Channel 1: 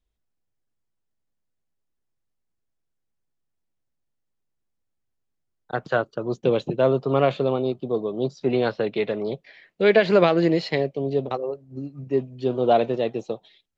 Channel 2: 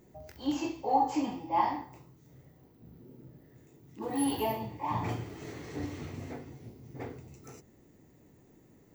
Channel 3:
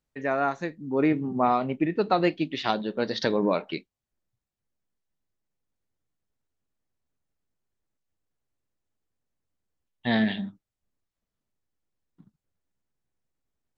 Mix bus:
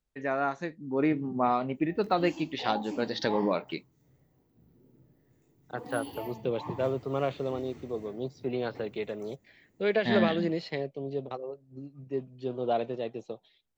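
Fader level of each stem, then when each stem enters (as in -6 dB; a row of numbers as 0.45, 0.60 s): -10.0, -9.0, -3.5 dB; 0.00, 1.75, 0.00 s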